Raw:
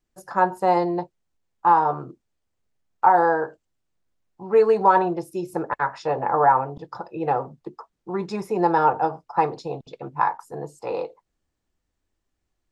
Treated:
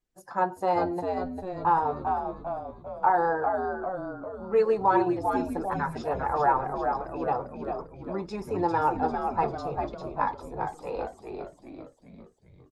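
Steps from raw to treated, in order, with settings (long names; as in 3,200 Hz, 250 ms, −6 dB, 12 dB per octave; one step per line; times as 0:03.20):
spectral magnitudes quantised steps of 15 dB
echo with shifted repeats 398 ms, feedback 53%, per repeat −94 Hz, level −5 dB
level −6 dB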